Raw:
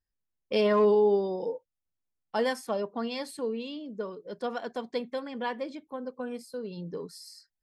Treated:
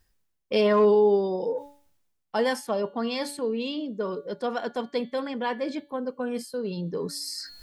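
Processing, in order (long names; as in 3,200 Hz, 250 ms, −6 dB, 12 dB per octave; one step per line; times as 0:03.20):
hum removal 285.9 Hz, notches 16
reversed playback
upward compression, threshold −27 dBFS
reversed playback
level +3 dB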